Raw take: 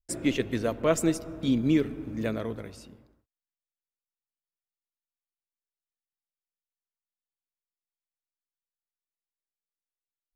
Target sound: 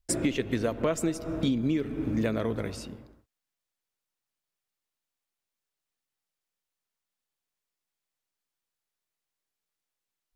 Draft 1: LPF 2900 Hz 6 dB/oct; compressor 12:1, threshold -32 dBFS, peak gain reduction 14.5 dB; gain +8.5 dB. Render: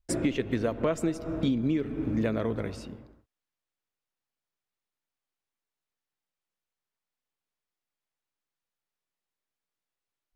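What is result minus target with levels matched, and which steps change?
8000 Hz band -6.0 dB
change: LPF 10000 Hz 6 dB/oct

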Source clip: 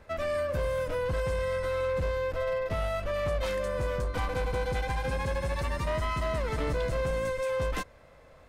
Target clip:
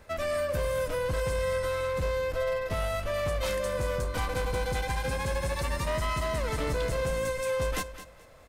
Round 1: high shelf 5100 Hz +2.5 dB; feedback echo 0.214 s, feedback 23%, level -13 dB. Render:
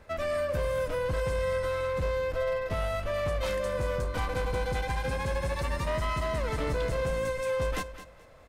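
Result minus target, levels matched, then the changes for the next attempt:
8000 Hz band -5.5 dB
change: high shelf 5100 Hz +10.5 dB

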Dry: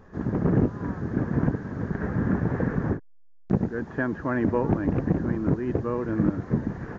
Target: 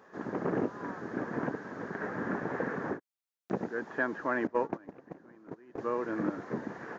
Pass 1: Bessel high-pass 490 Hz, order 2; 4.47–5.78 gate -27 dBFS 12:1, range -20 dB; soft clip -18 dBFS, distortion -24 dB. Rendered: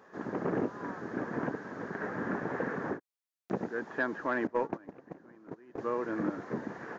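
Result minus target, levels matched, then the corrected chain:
soft clip: distortion +12 dB
Bessel high-pass 490 Hz, order 2; 4.47–5.78 gate -27 dBFS 12:1, range -20 dB; soft clip -11 dBFS, distortion -36 dB

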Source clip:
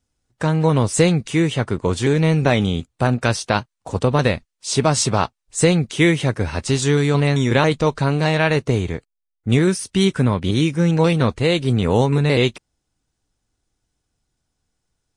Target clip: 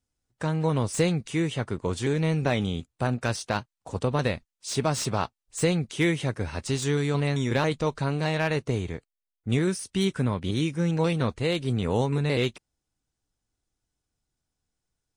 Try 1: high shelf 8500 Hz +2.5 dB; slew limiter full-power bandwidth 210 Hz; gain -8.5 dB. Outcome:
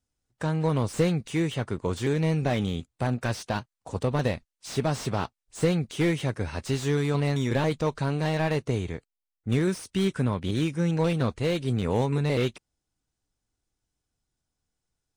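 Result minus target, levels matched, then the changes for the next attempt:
slew limiter: distortion +11 dB
change: slew limiter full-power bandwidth 650.5 Hz

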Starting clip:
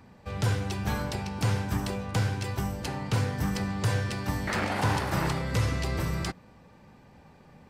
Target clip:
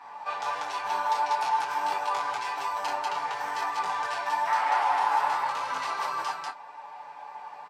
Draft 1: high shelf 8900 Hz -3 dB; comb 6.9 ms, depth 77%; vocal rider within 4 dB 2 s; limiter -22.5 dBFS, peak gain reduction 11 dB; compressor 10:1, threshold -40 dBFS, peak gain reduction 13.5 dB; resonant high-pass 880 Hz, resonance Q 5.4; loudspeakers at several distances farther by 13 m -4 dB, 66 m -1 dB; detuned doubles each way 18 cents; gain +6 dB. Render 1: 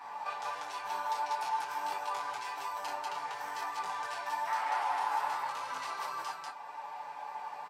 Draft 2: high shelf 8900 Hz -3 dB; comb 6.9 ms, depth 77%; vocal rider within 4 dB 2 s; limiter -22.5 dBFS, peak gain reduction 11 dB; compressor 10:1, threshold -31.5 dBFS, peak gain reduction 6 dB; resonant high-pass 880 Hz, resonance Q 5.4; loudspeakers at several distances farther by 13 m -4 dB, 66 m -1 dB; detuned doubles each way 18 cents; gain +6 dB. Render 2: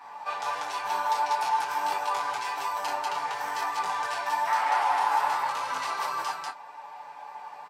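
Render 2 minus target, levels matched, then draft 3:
8000 Hz band +3.0 dB
high shelf 8900 Hz -13 dB; comb 6.9 ms, depth 77%; vocal rider within 4 dB 2 s; limiter -22.5 dBFS, peak gain reduction 11 dB; compressor 10:1, threshold -31.5 dBFS, peak gain reduction 6 dB; resonant high-pass 880 Hz, resonance Q 5.4; loudspeakers at several distances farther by 13 m -4 dB, 66 m -1 dB; detuned doubles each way 18 cents; gain +6 dB

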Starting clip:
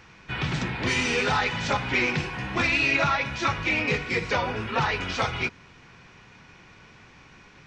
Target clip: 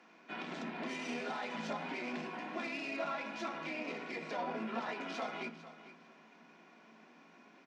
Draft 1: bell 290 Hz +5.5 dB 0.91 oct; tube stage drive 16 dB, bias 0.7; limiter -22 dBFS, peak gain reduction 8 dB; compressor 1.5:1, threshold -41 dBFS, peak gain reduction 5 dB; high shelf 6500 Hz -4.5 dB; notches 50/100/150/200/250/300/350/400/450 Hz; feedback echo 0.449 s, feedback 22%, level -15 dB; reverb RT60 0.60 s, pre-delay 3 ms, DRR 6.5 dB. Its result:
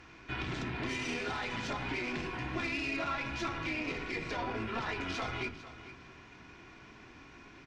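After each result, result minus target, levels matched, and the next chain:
125 Hz band +8.5 dB; compressor: peak gain reduction +2.5 dB
bell 290 Hz +5.5 dB 0.91 oct; tube stage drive 16 dB, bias 0.7; limiter -22 dBFS, peak gain reduction 8 dB; compressor 1.5:1, threshold -41 dBFS, peak gain reduction 5 dB; rippled Chebyshev high-pass 160 Hz, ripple 9 dB; high shelf 6500 Hz -4.5 dB; notches 50/100/150/200/250/300/350/400/450 Hz; feedback echo 0.449 s, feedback 22%, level -15 dB; reverb RT60 0.60 s, pre-delay 3 ms, DRR 6.5 dB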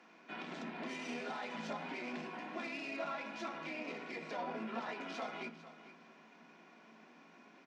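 compressor: peak gain reduction +2.5 dB
bell 290 Hz +5.5 dB 0.91 oct; tube stage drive 16 dB, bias 0.7; limiter -22 dBFS, peak gain reduction 8 dB; compressor 1.5:1, threshold -33.5 dBFS, peak gain reduction 2.5 dB; rippled Chebyshev high-pass 160 Hz, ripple 9 dB; high shelf 6500 Hz -4.5 dB; notches 50/100/150/200/250/300/350/400/450 Hz; feedback echo 0.449 s, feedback 22%, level -15 dB; reverb RT60 0.60 s, pre-delay 3 ms, DRR 6.5 dB

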